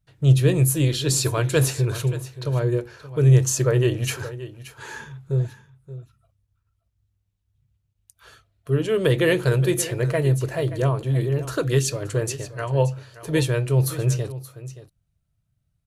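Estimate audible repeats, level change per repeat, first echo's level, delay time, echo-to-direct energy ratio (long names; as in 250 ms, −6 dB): 1, repeats not evenly spaced, −15.0 dB, 576 ms, −15.0 dB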